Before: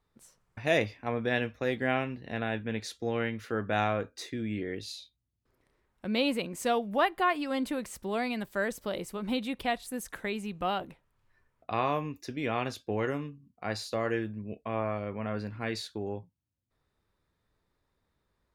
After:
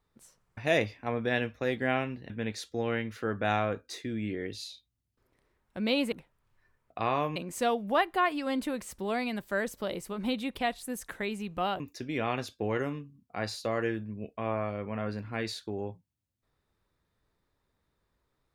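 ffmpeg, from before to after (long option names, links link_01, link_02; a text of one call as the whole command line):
ffmpeg -i in.wav -filter_complex "[0:a]asplit=5[link_01][link_02][link_03][link_04][link_05];[link_01]atrim=end=2.302[link_06];[link_02]atrim=start=2.578:end=6.402[link_07];[link_03]atrim=start=10.838:end=12.082[link_08];[link_04]atrim=start=6.398:end=10.842[link_09];[link_05]atrim=start=12.078[link_10];[link_06][link_07]acrossfade=duration=0.004:curve1=hsin:curve2=hsin[link_11];[link_11][link_08]acrossfade=duration=0.004:curve1=hsin:curve2=hsin[link_12];[link_12][link_09]acrossfade=duration=0.004:curve1=hsin:curve2=hsin[link_13];[link_13][link_10]acrossfade=duration=0.004:curve1=hsin:curve2=hsin" out.wav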